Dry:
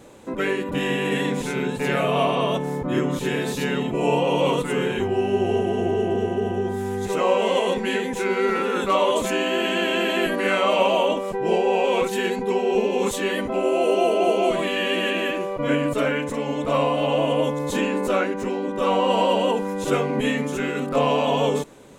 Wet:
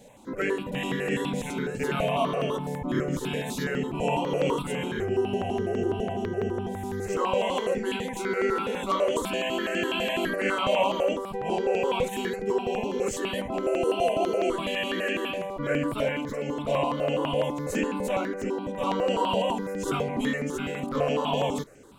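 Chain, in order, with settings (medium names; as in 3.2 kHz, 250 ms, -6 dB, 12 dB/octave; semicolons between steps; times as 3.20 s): stepped phaser 12 Hz 330–3700 Hz; trim -2 dB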